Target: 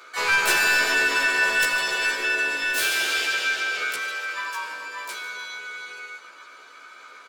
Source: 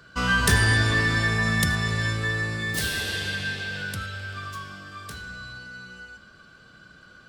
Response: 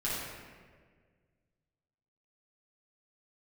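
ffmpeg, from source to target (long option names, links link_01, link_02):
-filter_complex "[0:a]highpass=frequency=430:width=0.5412,highpass=frequency=430:width=1.3066,aecho=1:1:152|304|456|608|760:0.133|0.072|0.0389|0.021|0.0113,asoftclip=type=tanh:threshold=-22dB,asplit=3[link_01][link_02][link_03];[link_02]asetrate=37084,aresample=44100,atempo=1.18921,volume=0dB[link_04];[link_03]asetrate=66075,aresample=44100,atempo=0.66742,volume=-3dB[link_05];[link_01][link_04][link_05]amix=inputs=3:normalize=0,asplit=2[link_06][link_07];[link_07]adelay=14,volume=-2.5dB[link_08];[link_06][link_08]amix=inputs=2:normalize=0,asplit=2[link_09][link_10];[1:a]atrim=start_sample=2205,adelay=102[link_11];[link_10][link_11]afir=irnorm=-1:irlink=0,volume=-22dB[link_12];[link_09][link_12]amix=inputs=2:normalize=0"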